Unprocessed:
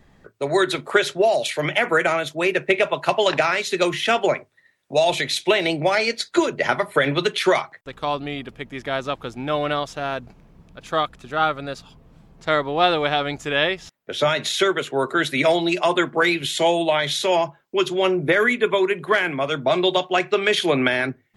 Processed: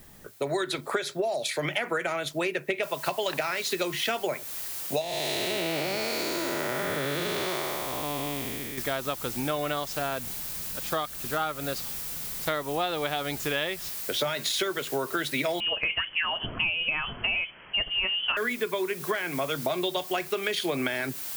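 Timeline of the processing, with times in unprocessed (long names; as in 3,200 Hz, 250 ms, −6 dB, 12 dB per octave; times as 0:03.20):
0:00.77–0:01.62: notch filter 2,900 Hz, Q 5.8
0:02.83: noise floor change −60 dB −41 dB
0:05.01–0:08.78: spectrum smeared in time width 456 ms
0:15.60–0:18.37: voice inversion scrambler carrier 3,200 Hz
whole clip: high-shelf EQ 9,600 Hz +8.5 dB; downward compressor 6 to 1, threshold −26 dBFS; dynamic equaliser 4,600 Hz, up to +4 dB, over −48 dBFS, Q 3.8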